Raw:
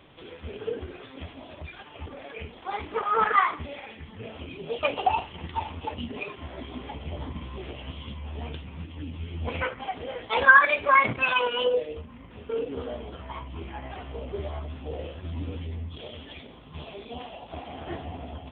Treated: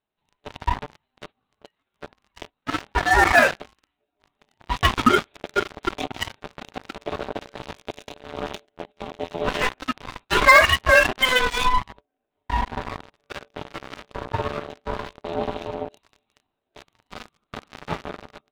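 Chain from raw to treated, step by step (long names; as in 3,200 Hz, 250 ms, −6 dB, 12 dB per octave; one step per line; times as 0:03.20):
harmonic generator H 3 −7 dB, 5 −16 dB, 7 −40 dB, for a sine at −3.5 dBFS
in parallel at +2 dB: speech leveller within 4 dB 2 s
on the sum: leveller curve on the samples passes 5
ring modulation 510 Hz
noise gate −35 dBFS, range −14 dB
level −7 dB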